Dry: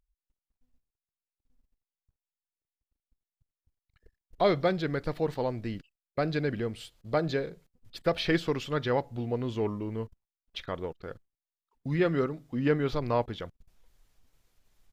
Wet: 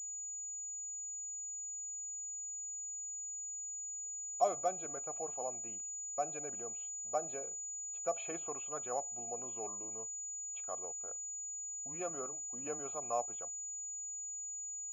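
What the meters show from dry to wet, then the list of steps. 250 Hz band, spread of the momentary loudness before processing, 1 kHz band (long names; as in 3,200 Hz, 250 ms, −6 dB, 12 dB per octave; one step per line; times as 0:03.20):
−22.0 dB, 15 LU, −4.5 dB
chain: formant filter a
switching amplifier with a slow clock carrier 6,900 Hz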